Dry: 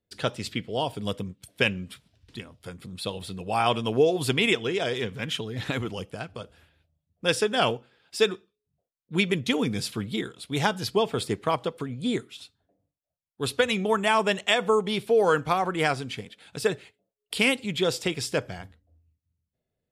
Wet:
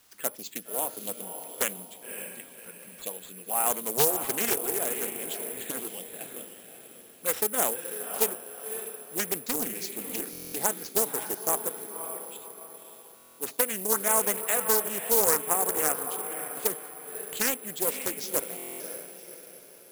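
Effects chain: high-pass 170 Hz 24 dB/octave; tone controls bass -9 dB, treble -3 dB; word length cut 10-bit, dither triangular; touch-sensitive phaser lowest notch 470 Hz, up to 4.2 kHz, full sweep at -26 dBFS; 11.79–12.21 s: vowel filter e; echo that smears into a reverb 557 ms, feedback 42%, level -8 dB; careless resampling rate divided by 4×, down none, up zero stuff; buffer glitch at 10.31/13.15/18.57 s, samples 1024, times 9; loudspeaker Doppler distortion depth 0.5 ms; trim -5.5 dB

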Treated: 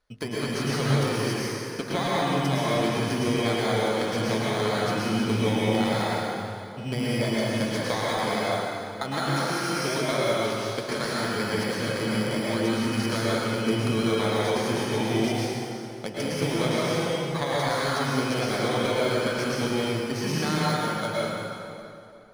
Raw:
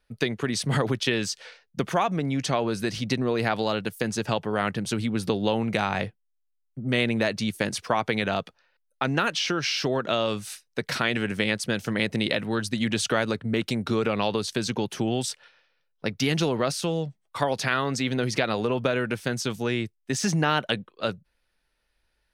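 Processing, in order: bit-reversed sample order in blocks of 16 samples; bass shelf 490 Hz -8 dB; de-hum 50.51 Hz, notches 38; compression 2.5:1, threshold -32 dBFS, peak gain reduction 9 dB; distance through air 100 m; plate-style reverb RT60 2.7 s, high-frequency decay 0.75×, pre-delay 95 ms, DRR -7 dB; trim +4.5 dB

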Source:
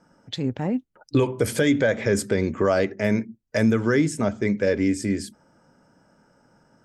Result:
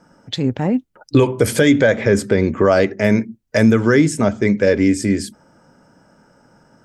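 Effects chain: 1.96–2.72 s: treble shelf 5.2 kHz -9 dB; trim +7 dB

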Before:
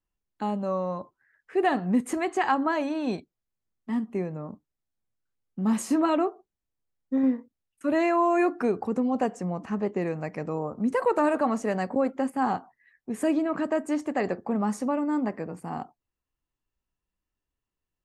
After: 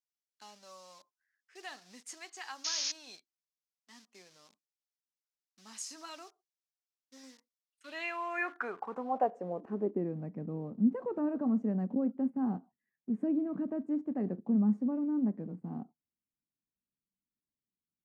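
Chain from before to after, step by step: peaking EQ 1.5 kHz +2.5 dB 0.22 oct; in parallel at -11.5 dB: word length cut 6-bit, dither none; on the sum: painted sound noise, 2.64–2.92 s, 850–6800 Hz -29 dBFS; band-pass sweep 5.4 kHz -> 210 Hz, 7.58–10.19 s; trim -1 dB

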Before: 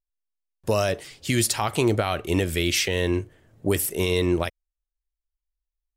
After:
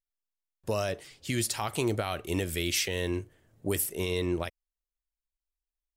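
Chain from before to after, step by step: 1.53–3.84 s: treble shelf 6 kHz +6.5 dB; trim -7.5 dB

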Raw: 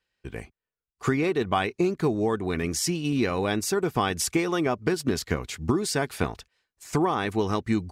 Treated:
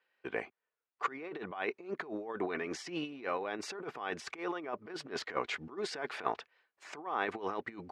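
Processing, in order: compressor with a negative ratio -30 dBFS, ratio -0.5; band-pass 470–2200 Hz

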